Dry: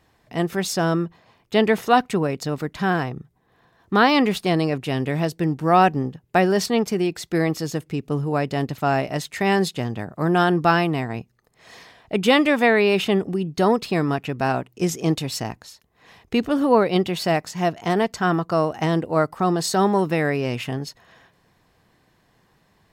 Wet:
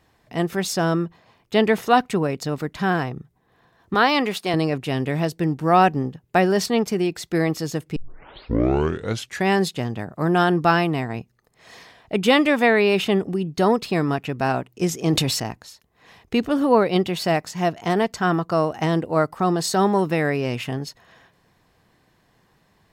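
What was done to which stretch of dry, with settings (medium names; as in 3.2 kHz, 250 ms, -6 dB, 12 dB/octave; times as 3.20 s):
3.94–4.54 s: high-pass 390 Hz 6 dB/octave
7.96 s: tape start 1.54 s
14.95–15.40 s: decay stretcher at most 31 dB/s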